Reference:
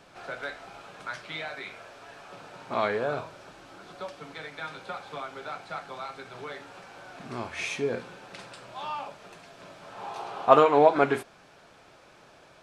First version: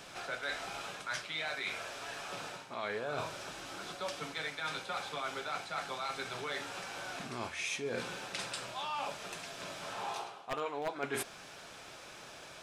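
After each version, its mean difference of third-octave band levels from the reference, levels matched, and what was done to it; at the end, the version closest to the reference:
11.0 dB: wavefolder on the positive side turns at −11.5 dBFS
high-shelf EQ 2,300 Hz +11 dB
notch filter 4,400 Hz, Q 23
reversed playback
downward compressor 12 to 1, threshold −35 dBFS, peak gain reduction 24.5 dB
reversed playback
level +1 dB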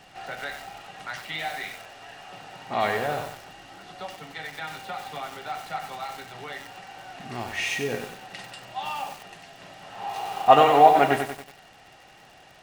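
4.0 dB: parametric band 660 Hz −7.5 dB 2.7 octaves
surface crackle 86 per second −47 dBFS
hollow resonant body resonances 770/1,900/2,800 Hz, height 15 dB, ringing for 40 ms
feedback echo at a low word length 94 ms, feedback 55%, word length 7 bits, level −6 dB
level +4 dB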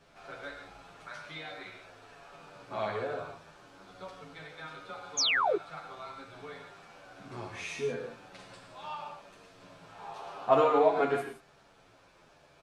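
2.5 dB: low-shelf EQ 87 Hz +8.5 dB
reverb whose tail is shaped and stops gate 190 ms flat, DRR 3 dB
sound drawn into the spectrogram fall, 0:05.17–0:05.57, 340–7,000 Hz −19 dBFS
barber-pole flanger 9.6 ms −0.89 Hz
level −5 dB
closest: third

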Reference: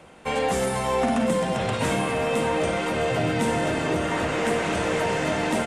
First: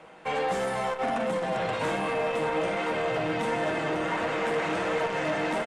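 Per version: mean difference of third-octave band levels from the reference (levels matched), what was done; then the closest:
3.5 dB: comb filter 6.2 ms, depth 33%
mid-hump overdrive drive 14 dB, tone 1,800 Hz, clips at −10 dBFS
flanger 1.4 Hz, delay 3.9 ms, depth 3.2 ms, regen +80%
saturating transformer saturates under 560 Hz
level −1.5 dB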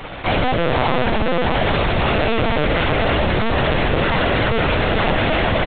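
8.5 dB: frequency shifter −17 Hz
fuzz pedal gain 45 dB, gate −47 dBFS
far-end echo of a speakerphone 150 ms, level −11 dB
linear-prediction vocoder at 8 kHz pitch kept
level −3 dB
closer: first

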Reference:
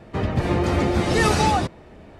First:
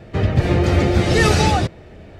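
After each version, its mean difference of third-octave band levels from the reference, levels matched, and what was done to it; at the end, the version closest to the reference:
1.5 dB: graphic EQ with 15 bands 100 Hz +4 dB, 250 Hz −4 dB, 1,000 Hz −8 dB, 10,000 Hz −5 dB
level +5 dB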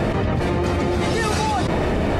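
8.0 dB: envelope flattener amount 100%
level −4 dB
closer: first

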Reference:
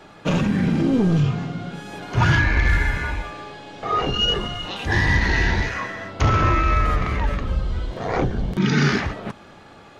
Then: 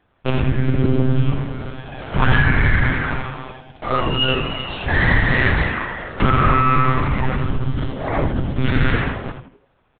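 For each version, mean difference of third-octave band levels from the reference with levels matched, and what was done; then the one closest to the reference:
7.0 dB: one-pitch LPC vocoder at 8 kHz 130 Hz
noise gate −36 dBFS, range −20 dB
echo with shifted repeats 81 ms, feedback 37%, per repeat −140 Hz, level −7 dB
level +2 dB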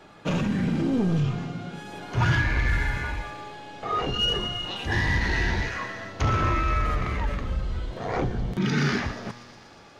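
1.5 dB: in parallel at −8 dB: hard clipping −18 dBFS, distortion −11 dB
on the sum: tuned comb filter 120 Hz, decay 1.8 s, mix 60%
delay with a high-pass on its return 120 ms, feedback 81%, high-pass 4,100 Hz, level −12 dB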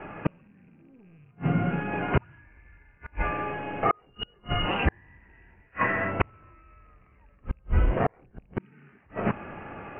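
18.0 dB: loose part that buzzes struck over −18 dBFS, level −21 dBFS
Butterworth low-pass 2,800 Hz 96 dB per octave
gate with flip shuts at −15 dBFS, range −41 dB
level +5 dB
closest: second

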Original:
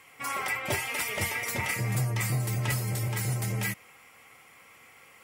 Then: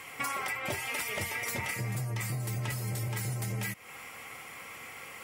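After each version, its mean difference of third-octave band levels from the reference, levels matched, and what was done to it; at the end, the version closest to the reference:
5.0 dB: downward compressor 16 to 1, threshold −40 dBFS, peak gain reduction 16 dB
level +9 dB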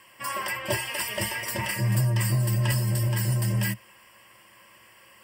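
3.5 dB: EQ curve with evenly spaced ripples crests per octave 1.3, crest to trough 13 dB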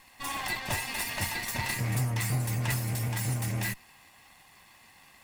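2.5 dB: lower of the sound and its delayed copy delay 1.1 ms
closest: third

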